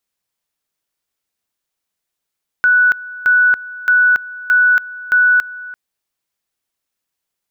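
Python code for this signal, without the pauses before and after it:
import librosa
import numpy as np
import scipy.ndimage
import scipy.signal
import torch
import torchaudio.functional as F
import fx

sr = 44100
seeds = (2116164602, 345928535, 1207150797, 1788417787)

y = fx.two_level_tone(sr, hz=1480.0, level_db=-8.0, drop_db=19.0, high_s=0.28, low_s=0.34, rounds=5)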